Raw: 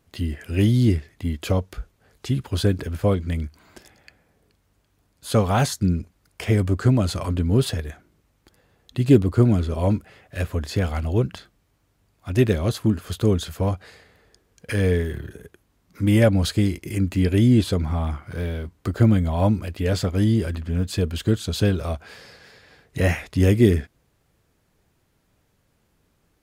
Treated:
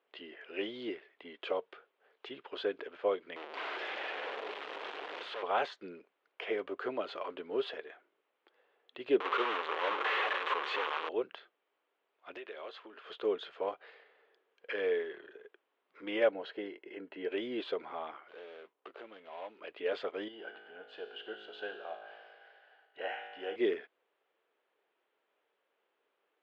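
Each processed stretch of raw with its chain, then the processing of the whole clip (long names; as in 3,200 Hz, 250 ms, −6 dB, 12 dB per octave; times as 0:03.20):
0:03.36–0:05.43: sign of each sample alone + multiband delay without the direct sound highs, lows 530 ms, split 180 Hz
0:09.20–0:11.09: linear delta modulator 64 kbit/s, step −15.5 dBFS + loudspeaker in its box 380–9,700 Hz, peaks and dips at 660 Hz −8 dB, 1,100 Hz +8 dB, 4,900 Hz −5 dB
0:12.37–0:13.06: meter weighting curve A + downward compressor 8 to 1, threshold −31 dBFS
0:16.31–0:17.30: low-pass filter 1,900 Hz 6 dB per octave + notch comb filter 1,200 Hz
0:18.28–0:19.61: running median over 25 samples + spectral tilt +2.5 dB per octave + downward compressor 2.5 to 1, threshold −34 dBFS
0:20.28–0:23.56: tuned comb filter 53 Hz, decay 1.6 s, mix 80% + hollow resonant body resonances 780/1,500/2,900 Hz, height 15 dB, ringing for 20 ms
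whole clip: elliptic band-pass filter 410–3,200 Hz, stop band 80 dB; de-essing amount 85%; level −7 dB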